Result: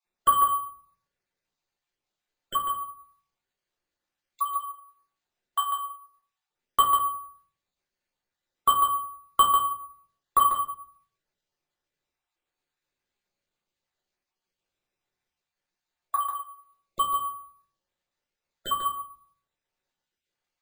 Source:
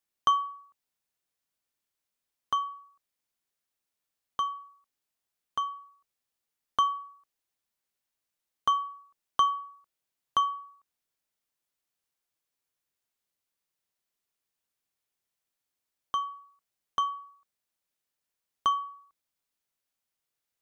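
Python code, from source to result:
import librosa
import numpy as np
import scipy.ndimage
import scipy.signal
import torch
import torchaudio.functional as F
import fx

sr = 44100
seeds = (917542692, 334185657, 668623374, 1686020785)

y = fx.spec_dropout(x, sr, seeds[0], share_pct=37)
y = fx.dynamic_eq(y, sr, hz=1400.0, q=0.84, threshold_db=-39.0, ratio=4.0, max_db=5)
y = y + 10.0 ** (-6.5 / 20.0) * np.pad(y, (int(145 * sr / 1000.0), 0))[:len(y)]
y = fx.room_shoebox(y, sr, seeds[1], volume_m3=39.0, walls='mixed', distance_m=0.94)
y = np.repeat(scipy.signal.resample_poly(y, 1, 4), 4)[:len(y)]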